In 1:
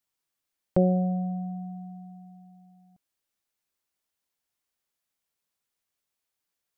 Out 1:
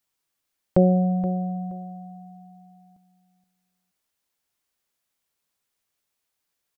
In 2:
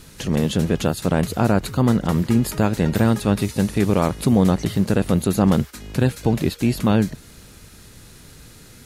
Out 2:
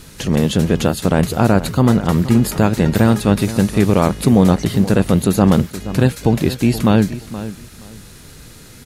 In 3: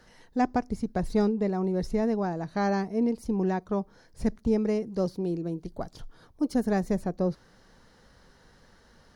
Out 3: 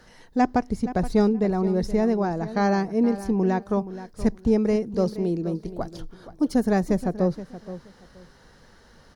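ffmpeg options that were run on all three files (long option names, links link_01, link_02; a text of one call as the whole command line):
ffmpeg -i in.wav -filter_complex "[0:a]asplit=2[link_01][link_02];[link_02]adelay=474,lowpass=frequency=4300:poles=1,volume=-14dB,asplit=2[link_03][link_04];[link_04]adelay=474,lowpass=frequency=4300:poles=1,volume=0.21[link_05];[link_01][link_03][link_05]amix=inputs=3:normalize=0,volume=4.5dB" out.wav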